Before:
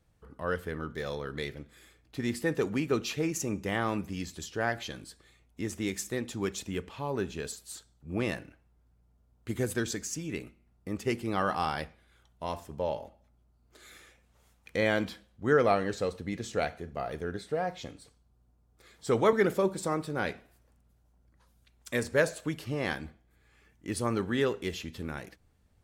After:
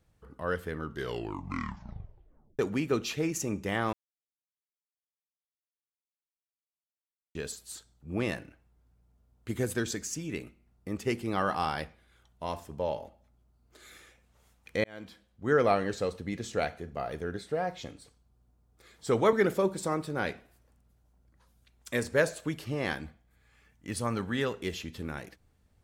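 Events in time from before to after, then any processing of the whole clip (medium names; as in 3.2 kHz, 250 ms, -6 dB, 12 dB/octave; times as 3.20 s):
0.83 s: tape stop 1.76 s
3.93–7.35 s: mute
14.84–15.63 s: fade in
23.05–24.59 s: peaking EQ 360 Hz -7.5 dB 0.53 oct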